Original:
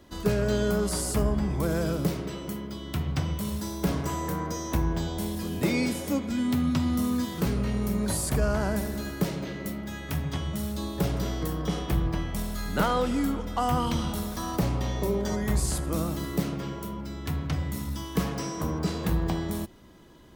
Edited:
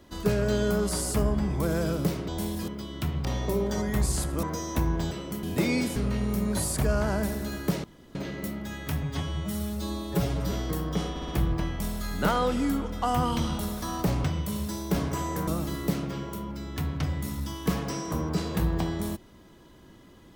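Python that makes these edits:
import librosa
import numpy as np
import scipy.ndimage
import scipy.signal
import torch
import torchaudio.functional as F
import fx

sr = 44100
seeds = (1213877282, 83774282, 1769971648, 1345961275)

y = fx.edit(x, sr, fx.swap(start_s=2.28, length_s=0.32, other_s=5.08, other_length_s=0.4),
    fx.swap(start_s=3.17, length_s=1.23, other_s=14.79, other_length_s=1.18),
    fx.cut(start_s=6.01, length_s=1.48),
    fx.insert_room_tone(at_s=9.37, length_s=0.31),
    fx.stretch_span(start_s=10.25, length_s=0.99, factor=1.5),
    fx.stutter(start_s=11.83, slice_s=0.06, count=4), tone=tone)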